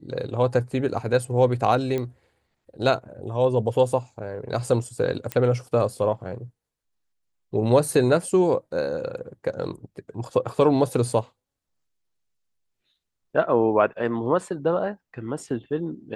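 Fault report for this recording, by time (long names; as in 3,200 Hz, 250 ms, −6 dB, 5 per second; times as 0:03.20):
0:01.98: click −16 dBFS
0:05.32: click −12 dBFS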